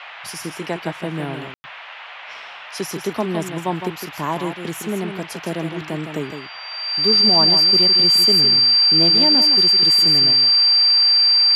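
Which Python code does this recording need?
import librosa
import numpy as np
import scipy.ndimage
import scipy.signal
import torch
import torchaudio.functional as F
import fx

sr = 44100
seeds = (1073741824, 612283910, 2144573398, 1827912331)

y = fx.notch(x, sr, hz=4700.0, q=30.0)
y = fx.fix_ambience(y, sr, seeds[0], print_start_s=2.14, print_end_s=2.64, start_s=1.54, end_s=1.64)
y = fx.noise_reduce(y, sr, print_start_s=1.73, print_end_s=2.23, reduce_db=27.0)
y = fx.fix_echo_inverse(y, sr, delay_ms=160, level_db=-8.0)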